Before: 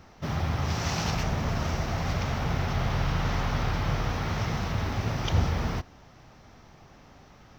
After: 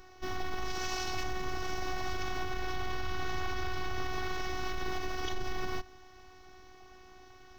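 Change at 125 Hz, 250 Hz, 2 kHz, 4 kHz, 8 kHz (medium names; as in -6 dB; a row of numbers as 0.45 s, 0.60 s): -17.0 dB, -10.0 dB, -3.0 dB, -4.0 dB, no reading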